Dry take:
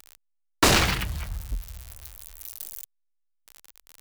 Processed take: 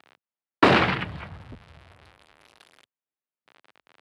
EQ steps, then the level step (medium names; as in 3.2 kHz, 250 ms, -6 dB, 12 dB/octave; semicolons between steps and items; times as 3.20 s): Bessel high-pass 160 Hz, order 4; steep low-pass 11 kHz 48 dB/octave; distance through air 420 m; +6.0 dB